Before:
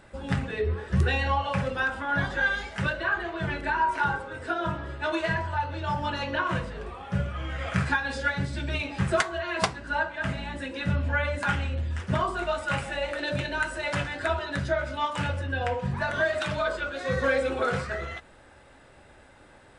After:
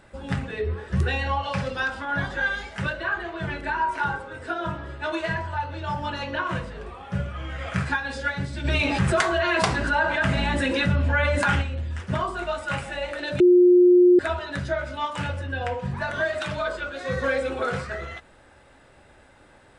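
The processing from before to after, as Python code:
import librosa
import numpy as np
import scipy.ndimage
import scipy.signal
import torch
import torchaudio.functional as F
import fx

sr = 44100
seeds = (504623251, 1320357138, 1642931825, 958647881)

y = fx.peak_eq(x, sr, hz=4800.0, db=8.0, octaves=0.94, at=(1.43, 2.05))
y = fx.env_flatten(y, sr, amount_pct=70, at=(8.64, 11.61), fade=0.02)
y = fx.edit(y, sr, fx.bleep(start_s=13.4, length_s=0.79, hz=357.0, db=-11.0), tone=tone)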